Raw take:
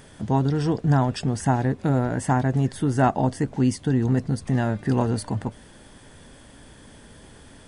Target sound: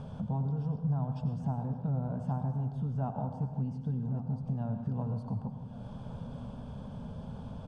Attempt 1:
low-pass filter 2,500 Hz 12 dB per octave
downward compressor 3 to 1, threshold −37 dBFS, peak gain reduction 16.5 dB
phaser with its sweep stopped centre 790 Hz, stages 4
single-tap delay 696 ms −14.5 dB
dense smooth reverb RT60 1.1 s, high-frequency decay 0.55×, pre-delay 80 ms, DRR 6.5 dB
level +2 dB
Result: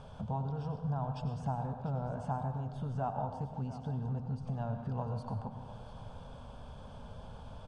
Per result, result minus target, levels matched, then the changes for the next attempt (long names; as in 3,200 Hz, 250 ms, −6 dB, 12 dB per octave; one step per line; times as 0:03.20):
echo 422 ms early; 250 Hz band −3.0 dB
change: single-tap delay 1,118 ms −14.5 dB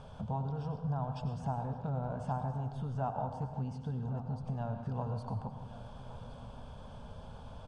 250 Hz band −2.5 dB
add after low-pass filter: parametric band 190 Hz +14.5 dB 2.1 octaves